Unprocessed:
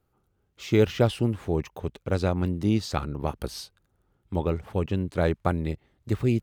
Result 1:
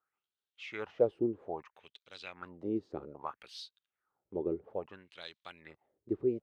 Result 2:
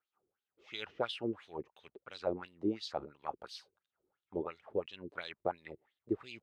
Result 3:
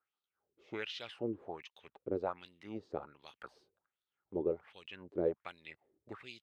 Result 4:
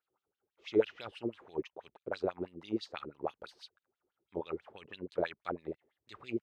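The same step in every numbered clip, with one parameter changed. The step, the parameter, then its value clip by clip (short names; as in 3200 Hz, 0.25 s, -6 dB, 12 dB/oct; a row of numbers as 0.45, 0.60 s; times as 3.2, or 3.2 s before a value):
wah, rate: 0.61, 2.9, 1.3, 6.1 Hz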